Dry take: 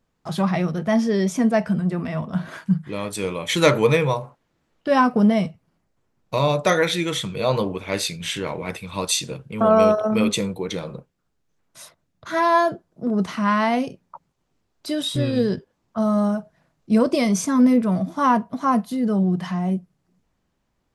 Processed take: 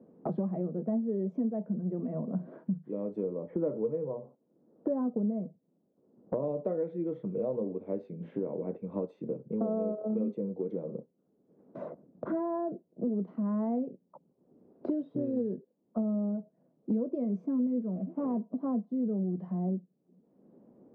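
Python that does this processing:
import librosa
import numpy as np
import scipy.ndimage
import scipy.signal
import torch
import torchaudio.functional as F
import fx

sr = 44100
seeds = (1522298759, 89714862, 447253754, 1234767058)

y = fx.lowpass(x, sr, hz=1800.0, slope=24, at=(3.23, 6.43))
y = fx.cvsd(y, sr, bps=16000, at=(17.96, 18.4))
y = scipy.signal.sosfilt(scipy.signal.cheby1(2, 1.0, [210.0, 510.0], 'bandpass', fs=sr, output='sos'), y)
y = fx.band_squash(y, sr, depth_pct=100)
y = y * 10.0 ** (-9.0 / 20.0)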